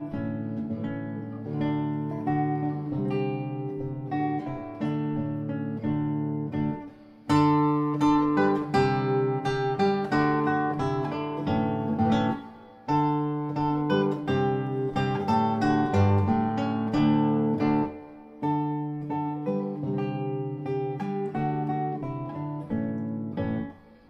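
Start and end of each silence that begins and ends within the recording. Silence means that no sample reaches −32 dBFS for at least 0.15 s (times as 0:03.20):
0:06.84–0:07.29
0:12.43–0:12.88
0:17.96–0:18.42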